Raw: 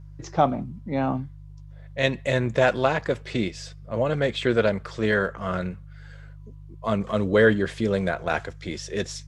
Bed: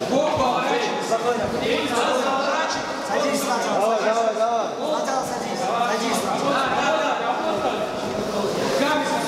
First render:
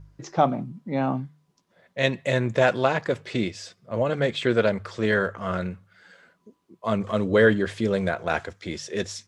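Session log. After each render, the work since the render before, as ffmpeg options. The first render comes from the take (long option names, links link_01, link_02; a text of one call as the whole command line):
ffmpeg -i in.wav -af "bandreject=frequency=50:width_type=h:width=4,bandreject=frequency=100:width_type=h:width=4,bandreject=frequency=150:width_type=h:width=4" out.wav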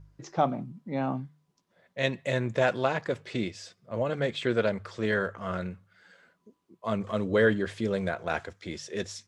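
ffmpeg -i in.wav -af "volume=-5dB" out.wav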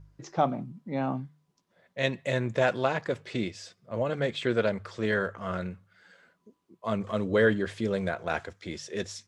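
ffmpeg -i in.wav -af anull out.wav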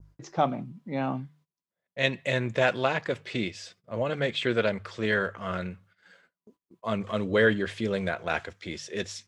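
ffmpeg -i in.wav -af "agate=range=-24dB:threshold=-58dB:ratio=16:detection=peak,adynamicequalizer=threshold=0.00501:dfrequency=2700:dqfactor=1:tfrequency=2700:tqfactor=1:attack=5:release=100:ratio=0.375:range=3:mode=boostabove:tftype=bell" out.wav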